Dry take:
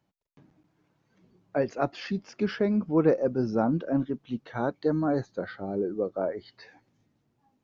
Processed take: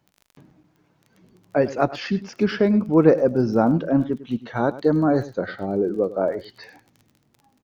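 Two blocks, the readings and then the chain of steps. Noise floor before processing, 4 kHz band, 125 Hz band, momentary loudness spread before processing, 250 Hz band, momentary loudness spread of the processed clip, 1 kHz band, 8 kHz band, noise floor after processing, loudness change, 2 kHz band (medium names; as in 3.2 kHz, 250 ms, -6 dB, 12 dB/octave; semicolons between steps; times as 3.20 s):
-75 dBFS, +7.0 dB, +7.0 dB, 10 LU, +7.0 dB, 11 LU, +7.0 dB, no reading, -66 dBFS, +7.0 dB, +7.0 dB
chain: crackle 22 per s -44 dBFS; delay 102 ms -16.5 dB; trim +7 dB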